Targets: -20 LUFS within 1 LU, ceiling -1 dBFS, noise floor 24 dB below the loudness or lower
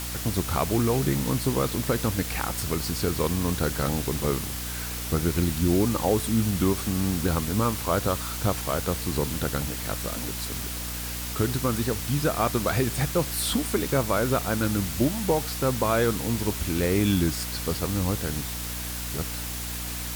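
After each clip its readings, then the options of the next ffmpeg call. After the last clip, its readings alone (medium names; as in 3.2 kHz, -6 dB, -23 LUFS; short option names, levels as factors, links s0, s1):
hum 60 Hz; highest harmonic 300 Hz; hum level -34 dBFS; noise floor -33 dBFS; noise floor target -50 dBFS; loudness -26.0 LUFS; peak level -10.5 dBFS; loudness target -20.0 LUFS
-> -af "bandreject=f=60:t=h:w=4,bandreject=f=120:t=h:w=4,bandreject=f=180:t=h:w=4,bandreject=f=240:t=h:w=4,bandreject=f=300:t=h:w=4"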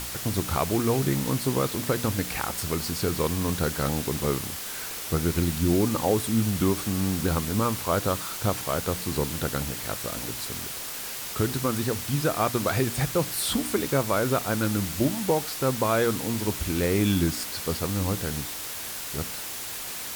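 hum not found; noise floor -35 dBFS; noise floor target -51 dBFS
-> -af "afftdn=nr=16:nf=-35"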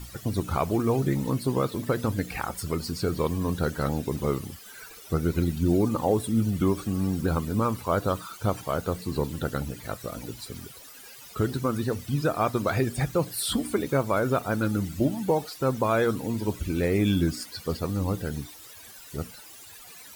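noise floor -47 dBFS; noise floor target -52 dBFS
-> -af "afftdn=nr=6:nf=-47"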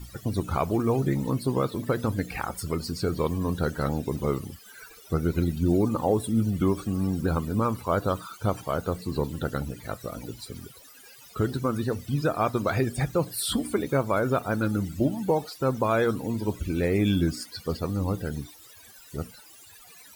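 noise floor -50 dBFS; noise floor target -52 dBFS
-> -af "afftdn=nr=6:nf=-50"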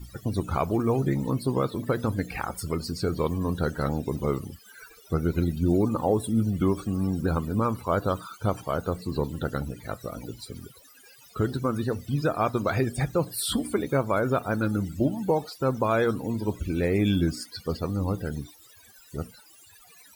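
noise floor -54 dBFS; loudness -27.5 LUFS; peak level -12.0 dBFS; loudness target -20.0 LUFS
-> -af "volume=2.37"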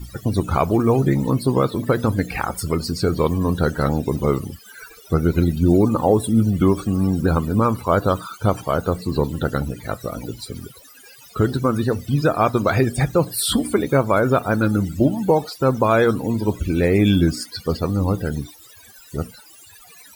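loudness -20.0 LUFS; peak level -4.5 dBFS; noise floor -46 dBFS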